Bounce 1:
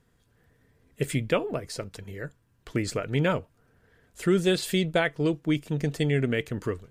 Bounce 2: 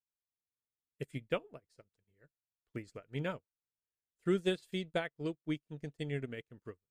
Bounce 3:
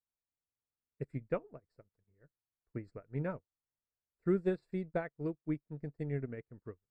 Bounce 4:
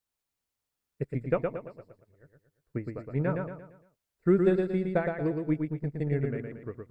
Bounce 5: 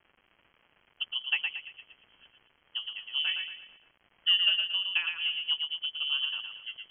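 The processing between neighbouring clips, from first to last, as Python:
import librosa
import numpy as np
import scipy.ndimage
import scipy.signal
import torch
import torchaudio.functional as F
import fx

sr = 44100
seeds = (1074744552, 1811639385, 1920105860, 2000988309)

y1 = fx.upward_expand(x, sr, threshold_db=-45.0, expansion=2.5)
y1 = y1 * librosa.db_to_amplitude(-7.0)
y2 = scipy.signal.lfilter(np.full(14, 1.0 / 14), 1.0, y1)
y2 = fx.low_shelf(y2, sr, hz=93.0, db=7.0)
y3 = fx.echo_feedback(y2, sr, ms=115, feedback_pct=41, wet_db=-4.5)
y3 = y3 * librosa.db_to_amplitude(7.5)
y4 = fx.wiener(y3, sr, points=9)
y4 = fx.dmg_crackle(y4, sr, seeds[0], per_s=310.0, level_db=-42.0)
y4 = fx.freq_invert(y4, sr, carrier_hz=3200)
y4 = y4 * librosa.db_to_amplitude(-2.5)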